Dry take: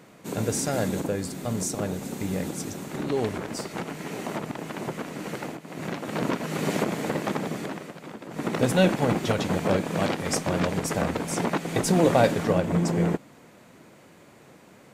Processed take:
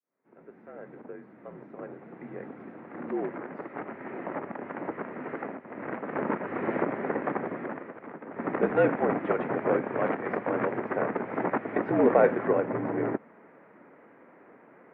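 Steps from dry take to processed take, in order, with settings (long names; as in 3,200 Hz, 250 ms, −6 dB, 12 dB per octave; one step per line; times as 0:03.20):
fade in at the beginning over 4.93 s
single-sideband voice off tune −55 Hz 290–2,100 Hz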